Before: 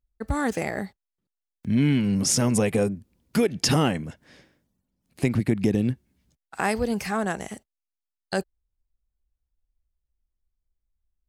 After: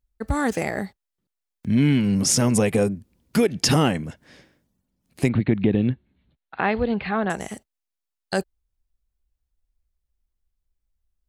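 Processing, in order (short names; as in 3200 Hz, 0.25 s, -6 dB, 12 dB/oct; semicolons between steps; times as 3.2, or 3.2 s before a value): 5.29–7.3 steep low-pass 4200 Hz 96 dB/oct; gain +2.5 dB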